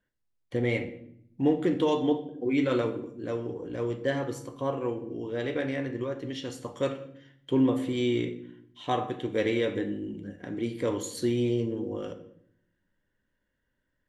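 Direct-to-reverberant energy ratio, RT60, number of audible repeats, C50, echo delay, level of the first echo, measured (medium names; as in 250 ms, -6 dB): 7.0 dB, 0.70 s, no echo, 11.5 dB, no echo, no echo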